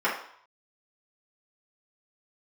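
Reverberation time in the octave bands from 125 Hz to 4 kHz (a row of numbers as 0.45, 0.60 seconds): 0.70, 0.50, 0.55, 0.70, 0.60, 0.60 seconds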